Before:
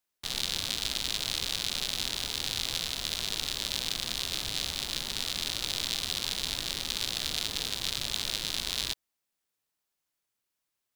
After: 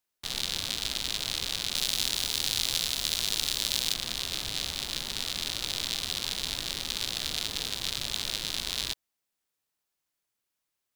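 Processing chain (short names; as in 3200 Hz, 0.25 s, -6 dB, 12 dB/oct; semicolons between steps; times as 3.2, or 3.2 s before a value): 1.75–3.94 high shelf 4100 Hz +7 dB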